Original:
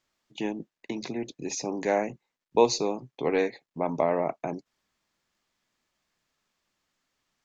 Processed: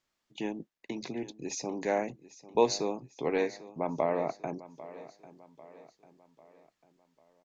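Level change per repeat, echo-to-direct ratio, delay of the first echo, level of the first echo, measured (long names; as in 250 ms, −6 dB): −6.5 dB, −16.0 dB, 796 ms, −17.0 dB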